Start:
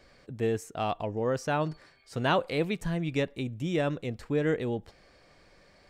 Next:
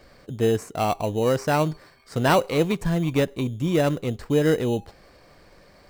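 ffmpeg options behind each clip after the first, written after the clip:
-filter_complex "[0:a]bandreject=f=403.5:t=h:w=4,bandreject=f=807:t=h:w=4,asplit=2[a][b];[b]acrusher=samples=13:mix=1:aa=0.000001,volume=-4.5dB[c];[a][c]amix=inputs=2:normalize=0,volume=3.5dB"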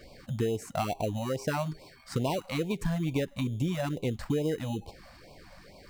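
-af "acompressor=threshold=-27dB:ratio=10,afftfilt=real='re*(1-between(b*sr/1024,340*pow(1600/340,0.5+0.5*sin(2*PI*2.3*pts/sr))/1.41,340*pow(1600/340,0.5+0.5*sin(2*PI*2.3*pts/sr))*1.41))':imag='im*(1-between(b*sr/1024,340*pow(1600/340,0.5+0.5*sin(2*PI*2.3*pts/sr))/1.41,340*pow(1600/340,0.5+0.5*sin(2*PI*2.3*pts/sr))*1.41))':win_size=1024:overlap=0.75,volume=1.5dB"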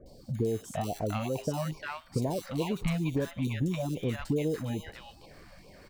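-filter_complex "[0:a]acrossover=split=890|3900[a][b][c];[c]adelay=60[d];[b]adelay=350[e];[a][e][d]amix=inputs=3:normalize=0"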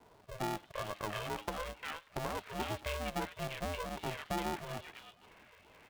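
-af "highshelf=f=2.4k:g=11.5,highpass=f=160:t=q:w=0.5412,highpass=f=160:t=q:w=1.307,lowpass=f=3k:t=q:w=0.5176,lowpass=f=3k:t=q:w=0.7071,lowpass=f=3k:t=q:w=1.932,afreqshift=160,aeval=exprs='val(0)*sgn(sin(2*PI*260*n/s))':c=same,volume=-7dB"

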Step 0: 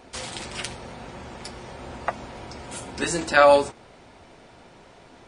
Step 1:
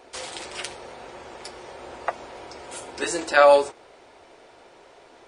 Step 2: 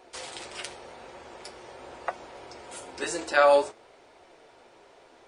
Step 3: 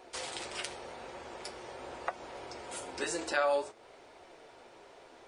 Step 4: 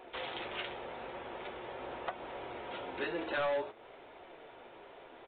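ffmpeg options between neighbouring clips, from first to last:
-af "lowshelf=f=280:t=q:w=1.5:g=-10,volume=-1dB"
-af "flanger=delay=5.2:depth=8.3:regen=75:speed=0.47:shape=triangular"
-af "acompressor=threshold=-34dB:ratio=2"
-af "aresample=8000,asoftclip=type=tanh:threshold=-31dB,aresample=44100,equalizer=f=79:t=o:w=0.35:g=-6,volume=2dB"

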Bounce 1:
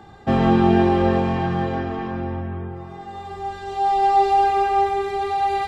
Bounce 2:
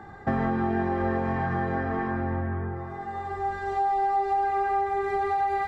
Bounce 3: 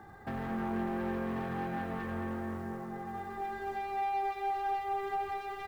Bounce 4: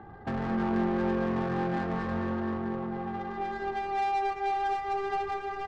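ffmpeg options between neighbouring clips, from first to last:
-af "highshelf=f=2.3k:t=q:w=3:g=-6.5,bandreject=f=58.58:t=h:w=4,bandreject=f=117.16:t=h:w=4,bandreject=f=175.74:t=h:w=4,bandreject=f=234.32:t=h:w=4,bandreject=f=292.9:t=h:w=4,bandreject=f=351.48:t=h:w=4,bandreject=f=410.06:t=h:w=4,bandreject=f=468.64:t=h:w=4,bandreject=f=527.22:t=h:w=4,bandreject=f=585.8:t=h:w=4,bandreject=f=644.38:t=h:w=4,acompressor=threshold=-23dB:ratio=6"
-filter_complex "[0:a]acrusher=bits=6:mode=log:mix=0:aa=0.000001,asoftclip=type=tanh:threshold=-26dB,asplit=2[a][b];[b]adelay=220,lowpass=f=3.5k:p=1,volume=-3dB,asplit=2[c][d];[d]adelay=220,lowpass=f=3.5k:p=1,volume=0.53,asplit=2[e][f];[f]adelay=220,lowpass=f=3.5k:p=1,volume=0.53,asplit=2[g][h];[h]adelay=220,lowpass=f=3.5k:p=1,volume=0.53,asplit=2[i][j];[j]adelay=220,lowpass=f=3.5k:p=1,volume=0.53,asplit=2[k][l];[l]adelay=220,lowpass=f=3.5k:p=1,volume=0.53,asplit=2[m][n];[n]adelay=220,lowpass=f=3.5k:p=1,volume=0.53[o];[a][c][e][g][i][k][m][o]amix=inputs=8:normalize=0,volume=-7.5dB"
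-filter_complex "[0:a]asplit=2[a][b];[b]adelay=17,volume=-13.5dB[c];[a][c]amix=inputs=2:normalize=0,adynamicsmooth=sensitivity=7.5:basefreq=1.2k,aecho=1:1:457|914|1371|1828:0.2|0.0798|0.0319|0.0128,volume=6dB"

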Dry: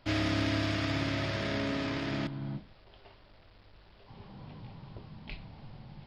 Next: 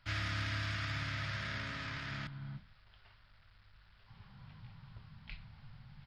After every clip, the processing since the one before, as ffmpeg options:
-af "firequalizer=gain_entry='entry(120,0);entry(320,-18);entry(1400,4);entry(2600,-1)':delay=0.05:min_phase=1,volume=-4.5dB"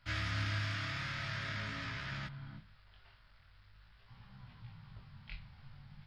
-af "flanger=delay=16:depth=7.4:speed=0.46,volume=3dB"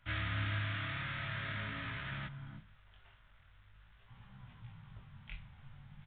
-af "aresample=8000,aresample=44100"

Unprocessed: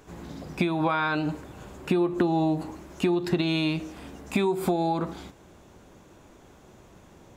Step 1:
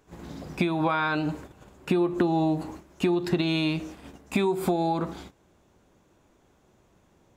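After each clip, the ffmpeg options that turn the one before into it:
-af "agate=range=-10dB:threshold=-41dB:ratio=16:detection=peak"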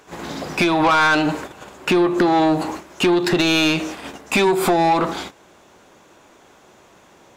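-filter_complex "[0:a]asplit=2[a][b];[b]highpass=f=720:p=1,volume=20dB,asoftclip=type=tanh:threshold=-11dB[c];[a][c]amix=inputs=2:normalize=0,lowpass=f=7.4k:p=1,volume=-6dB,volume=3.5dB"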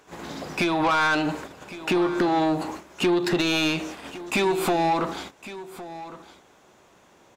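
-af "aecho=1:1:1110:0.168,volume=-6dB"

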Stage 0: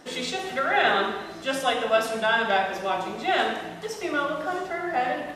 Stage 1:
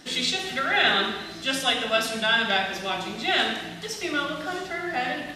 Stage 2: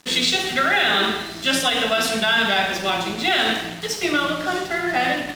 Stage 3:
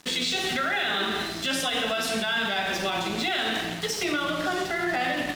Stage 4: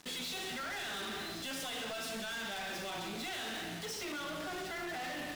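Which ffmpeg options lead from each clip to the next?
-af "equalizer=f=500:t=o:w=1:g=-8,equalizer=f=1k:t=o:w=1:g=-7,equalizer=f=4k:t=o:w=1:g=5,volume=3.5dB"
-af "alimiter=limit=-17dB:level=0:latency=1:release=57,aeval=exprs='sgn(val(0))*max(abs(val(0))-0.00531,0)':c=same,volume=8.5dB"
-af "alimiter=limit=-17.5dB:level=0:latency=1:release=71"
-af "asoftclip=type=hard:threshold=-34dB,volume=-4.5dB"

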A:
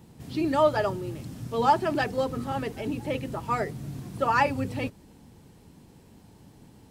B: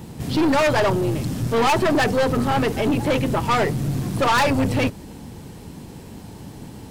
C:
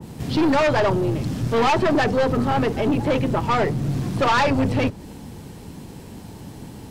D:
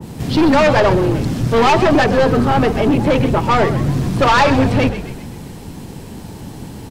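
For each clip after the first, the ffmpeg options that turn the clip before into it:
-af "aeval=exprs='0.335*sin(PI/2*2.51*val(0)/0.335)':c=same,aeval=exprs='(tanh(8.91*val(0)+0.3)-tanh(0.3))/8.91':c=same,volume=3.5dB"
-filter_complex "[0:a]acrossover=split=120|480|6800[a][b][c][d];[d]acompressor=threshold=-51dB:ratio=6[e];[a][b][c][e]amix=inputs=4:normalize=0,adynamicequalizer=threshold=0.02:dfrequency=1500:dqfactor=0.7:tfrequency=1500:tqfactor=0.7:attack=5:release=100:ratio=0.375:range=2:mode=cutabove:tftype=highshelf"
-filter_complex "[0:a]asplit=6[a][b][c][d][e][f];[b]adelay=129,afreqshift=-67,volume=-11dB[g];[c]adelay=258,afreqshift=-134,volume=-16.8dB[h];[d]adelay=387,afreqshift=-201,volume=-22.7dB[i];[e]adelay=516,afreqshift=-268,volume=-28.5dB[j];[f]adelay=645,afreqshift=-335,volume=-34.4dB[k];[a][g][h][i][j][k]amix=inputs=6:normalize=0,volume=6dB"

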